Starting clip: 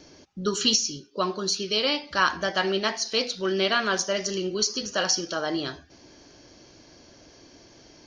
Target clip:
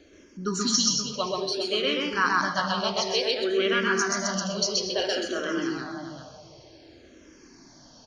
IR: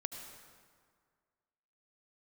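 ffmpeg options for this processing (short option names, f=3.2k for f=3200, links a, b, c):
-filter_complex "[0:a]asplit=2[a][b];[b]adelay=395,lowpass=f=1.2k:p=1,volume=-4.5dB,asplit=2[c][d];[d]adelay=395,lowpass=f=1.2k:p=1,volume=0.29,asplit=2[e][f];[f]adelay=395,lowpass=f=1.2k:p=1,volume=0.29,asplit=2[g][h];[h]adelay=395,lowpass=f=1.2k:p=1,volume=0.29[i];[a][c][e][g][i]amix=inputs=5:normalize=0,asplit=2[j][k];[1:a]atrim=start_sample=2205,afade=t=out:st=0.19:d=0.01,atrim=end_sample=8820,adelay=129[l];[k][l]afir=irnorm=-1:irlink=0,volume=1.5dB[m];[j][m]amix=inputs=2:normalize=0,asplit=2[n][o];[o]afreqshift=-0.57[p];[n][p]amix=inputs=2:normalize=1,volume=-1dB"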